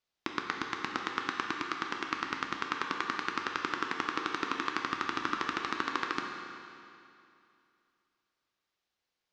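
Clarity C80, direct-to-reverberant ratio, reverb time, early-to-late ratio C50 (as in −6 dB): 4.0 dB, 1.0 dB, 2.6 s, 3.0 dB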